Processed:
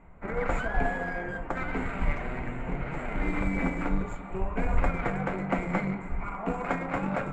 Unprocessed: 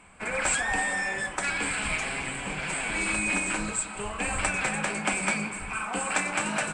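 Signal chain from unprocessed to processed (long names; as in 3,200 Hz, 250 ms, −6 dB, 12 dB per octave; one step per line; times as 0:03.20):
in parallel at −10 dB: bit reduction 4 bits
on the sum: bass and treble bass −7 dB, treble −15 dB
wrong playback speed 48 kHz file played as 44.1 kHz
spectral tilt −4.5 dB per octave
level −3.5 dB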